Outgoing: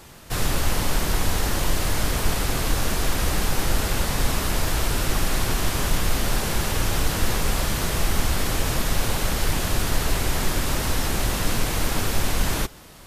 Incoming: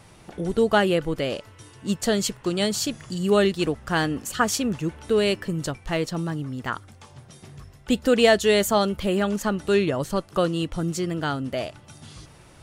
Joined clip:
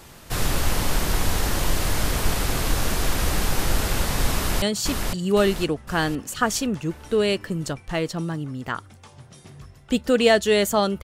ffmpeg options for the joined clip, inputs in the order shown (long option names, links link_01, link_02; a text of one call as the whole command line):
ffmpeg -i cue0.wav -i cue1.wav -filter_complex "[0:a]apad=whole_dur=11.03,atrim=end=11.03,atrim=end=4.622[link_01];[1:a]atrim=start=2.598:end=9.01[link_02];[link_01][link_02]acrossfade=duration=0.004:curve1=hsin:curve2=hsin,asplit=2[link_03][link_04];[link_04]afade=type=in:start_time=4.34:duration=0.01,afade=type=out:start_time=4.62:duration=0.01,aecho=0:1:510|1020|1530|2040|2550|3060|3570:0.707946|0.353973|0.176986|0.0884932|0.0442466|0.0221233|0.0110617[link_05];[link_03][link_05]amix=inputs=2:normalize=0" out.wav